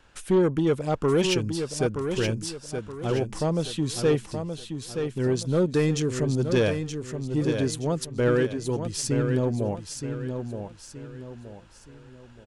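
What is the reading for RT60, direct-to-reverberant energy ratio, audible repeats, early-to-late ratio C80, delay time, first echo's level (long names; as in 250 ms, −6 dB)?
no reverb audible, no reverb audible, 4, no reverb audible, 923 ms, −7.0 dB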